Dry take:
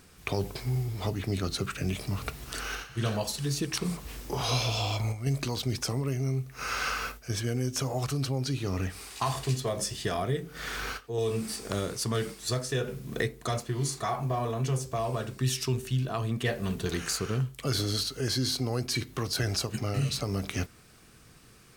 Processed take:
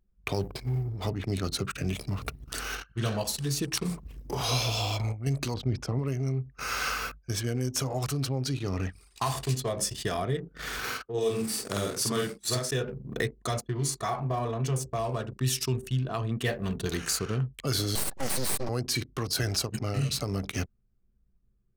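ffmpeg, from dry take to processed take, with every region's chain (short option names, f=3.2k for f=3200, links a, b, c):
-filter_complex "[0:a]asettb=1/sr,asplit=3[a][b][c];[a]atrim=end=5.544[d];[b]atrim=start=5.54:end=5.99,asetpts=PTS-STARTPTS,afade=t=in:d=0.004:c=qsin,afade=t=out:st=0.446:d=0.004:c=qsin,lowpass=f=1.8k:p=1,lowshelf=f=170:g=4[e];[c]atrim=start=5.986[f];[d][e]acrossfade=d=0.004:c1=hsin:c2=qsin[g];[g][f]acrossfade=d=0.004:c1=qsin:c2=hsin,asettb=1/sr,asplit=3[h][i][j];[h]atrim=end=10.794[k];[i]atrim=start=10.79:end=12.71,asetpts=PTS-STARTPTS,afade=t=in:d=0.004:c=qsin,afade=t=out:st=1.916:d=0.004:c=qsin,highpass=f=130:p=1,asplit=2[l][m];[m]adelay=49,volume=-2dB[n];[l][n]amix=inputs=2:normalize=0,atrim=end_sample=84672[o];[j]atrim=start=12.706[p];[k][o]acrossfade=d=0.004:c1=hsin:c2=qsin[q];[q][p]acrossfade=d=0.004:c1=qsin:c2=hsin,asettb=1/sr,asplit=3[r][s][t];[r]atrim=end=17.954[u];[s]atrim=start=17.95:end=18.69,asetpts=PTS-STARTPTS,afade=t=in:d=0.004:c=qsin,afade=t=out:st=0.736:d=0.004:c=qsin,aecho=1:1:5.3:0.78,atrim=end_sample=32634,aeval=exprs='abs(val(0))':c=same[v];[t]atrim=start=18.686[w];[u][v]acrossfade=d=0.004:c1=hsin:c2=qsin[x];[x][w]acrossfade=d=0.004:c1=qsin:c2=hsin,anlmdn=0.631,highshelf=f=9.2k:g=7.5"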